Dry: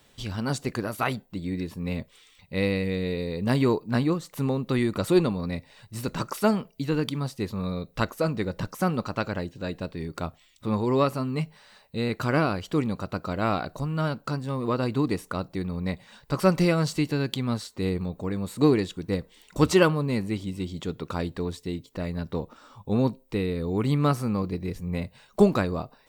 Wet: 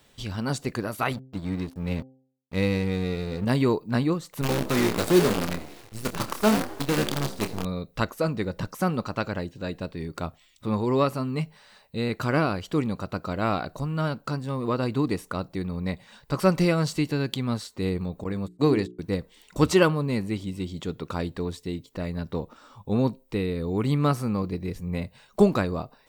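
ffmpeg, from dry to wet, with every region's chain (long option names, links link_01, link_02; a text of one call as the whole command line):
ffmpeg -i in.wav -filter_complex "[0:a]asettb=1/sr,asplit=3[link_01][link_02][link_03];[link_01]atrim=end=1.114[link_04];[link_02]atrim=start=1.11:end=3.45,asetpts=PTS-STARTPTS,afade=type=in:duration=0.004:curve=qsin,afade=type=out:start_time=2.336:duration=0.004:curve=qsin,lowshelf=frequency=190:gain=5.5,aeval=exprs='sgn(val(0))*max(abs(val(0))-0.0112,0)':channel_layout=same,bandreject=frequency=131:width_type=h:width=4,bandreject=frequency=262:width_type=h:width=4,bandreject=frequency=393:width_type=h:width=4,bandreject=frequency=524:width_type=h:width=4,bandreject=frequency=655:width_type=h:width=4,bandreject=frequency=786:width_type=h:width=4[link_05];[link_03]atrim=start=3.446[link_06];[link_04][link_05]acrossfade=duration=0.004:curve1=hsin:curve2=qsin[link_07];[link_07][link_06]acrossfade=duration=0.004:curve1=qsin:curve2=hsin,asettb=1/sr,asplit=3[link_08][link_09][link_10];[link_08]atrim=end=4.414[link_11];[link_09]atrim=start=4.41:end=7.65,asetpts=PTS-STARTPTS,afade=type=in:duration=0.004:curve=qsin,afade=type=out:start_time=3.236:duration=0.004:curve=qsin,asplit=7[link_12][link_13][link_14][link_15][link_16][link_17][link_18];[link_13]adelay=82,afreqshift=59,volume=-9dB[link_19];[link_14]adelay=164,afreqshift=118,volume=-14.4dB[link_20];[link_15]adelay=246,afreqshift=177,volume=-19.7dB[link_21];[link_16]adelay=328,afreqshift=236,volume=-25.1dB[link_22];[link_17]adelay=410,afreqshift=295,volume=-30.4dB[link_23];[link_18]adelay=492,afreqshift=354,volume=-35.8dB[link_24];[link_12][link_19][link_20][link_21][link_22][link_23][link_24]amix=inputs=7:normalize=0,atrim=end_sample=142884,acrusher=bits=5:dc=4:mix=0:aa=0.000001,asplit=2[link_25][link_26];[link_26]adelay=28,volume=-9dB[link_27];[link_25][link_27]amix=inputs=2:normalize=0,atrim=end_sample=142884[link_28];[link_10]atrim=start=7.646[link_29];[link_11][link_28]acrossfade=duration=0.004:curve1=hsin:curve2=qsin[link_30];[link_30][link_29]acrossfade=duration=0.004:curve1=qsin:curve2=hsin,asettb=1/sr,asplit=3[link_31][link_32][link_33];[link_31]atrim=end=18.244[link_34];[link_32]atrim=start=18.24:end=18.99,asetpts=PTS-STARTPTS,afade=type=in:duration=0.004:curve=qsin,afade=type=out:start_time=0.746:duration=0.004:curve=qsin,agate=range=-39dB:threshold=-32dB:ratio=16:release=100:detection=peak,bandreject=frequency=60:width_type=h:width=6,bandreject=frequency=120:width_type=h:width=6,bandreject=frequency=180:width_type=h:width=6,bandreject=frequency=240:width_type=h:width=6,bandreject=frequency=300:width_type=h:width=6,bandreject=frequency=360:width_type=h:width=6,bandreject=frequency=420:width_type=h:width=6[link_35];[link_33]atrim=start=18.986[link_36];[link_34][link_35]acrossfade=duration=0.004:curve1=hsin:curve2=qsin[link_37];[link_37][link_36]acrossfade=duration=0.004:curve1=qsin:curve2=hsin" out.wav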